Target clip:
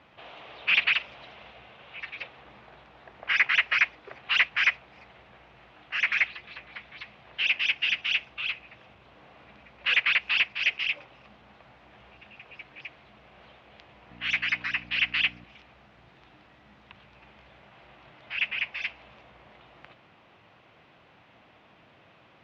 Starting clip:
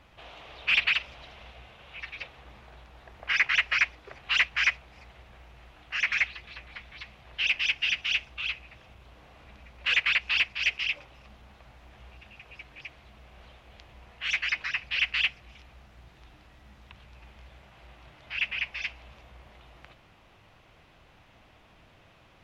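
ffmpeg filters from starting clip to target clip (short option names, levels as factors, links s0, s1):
-filter_complex "[0:a]asettb=1/sr,asplit=3[s0][s1][s2];[s0]atrim=end=14.104[s3];[s1]atrim=start=14.1:end=15.44,asetpts=PTS-STARTPTS,afade=t=in:d=0.004:c=qsin,afade=t=out:st=1.336:d=0.004:c=qsin,aeval=exprs='val(0)+0.00631*(sin(2*PI*60*n/s)+sin(2*PI*2*60*n/s)/2+sin(2*PI*3*60*n/s)/3+sin(2*PI*4*60*n/s)/4+sin(2*PI*5*60*n/s)/5)':c=same[s4];[s2]atrim=start=15.436[s5];[s3][s4]acrossfade=d=0.004:c1=hsin:c2=qsin[s6];[s6][s5]acrossfade=d=0.004:c1=qsin:c2=hsin,highpass=140,lowpass=3700,volume=1.26"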